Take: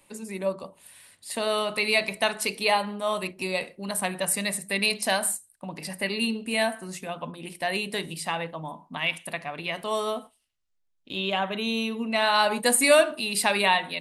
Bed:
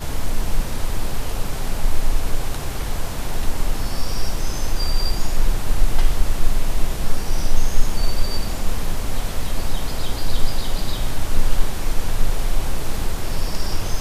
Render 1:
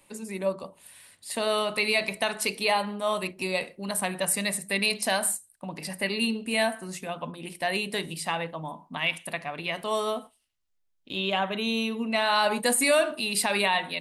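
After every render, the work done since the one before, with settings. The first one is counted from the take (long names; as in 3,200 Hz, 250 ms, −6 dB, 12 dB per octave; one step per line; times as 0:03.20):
brickwall limiter −13 dBFS, peak gain reduction 6 dB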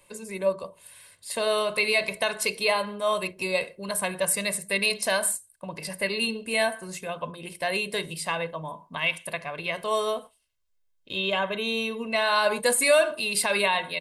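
comb filter 1.9 ms, depth 54%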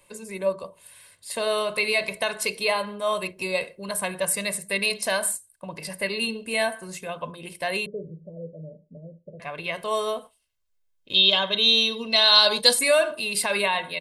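0:07.86–0:09.40: Chebyshev low-pass with heavy ripple 610 Hz, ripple 6 dB
0:11.14–0:12.79: flat-topped bell 4,300 Hz +16 dB 1.1 octaves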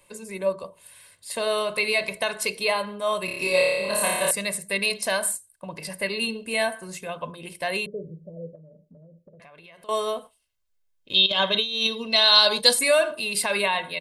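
0:03.25–0:04.31: flutter between parallel walls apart 4.9 metres, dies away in 1.4 s
0:08.55–0:09.89: downward compressor, threshold −47 dBFS
0:11.26–0:11.87: compressor whose output falls as the input rises −23 dBFS, ratio −0.5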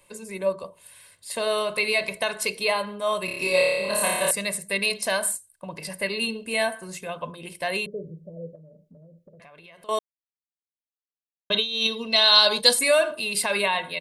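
0:09.99–0:11.50: silence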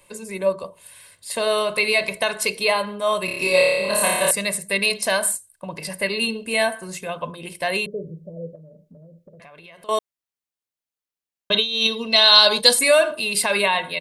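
level +4 dB
brickwall limiter −1 dBFS, peak gain reduction 1 dB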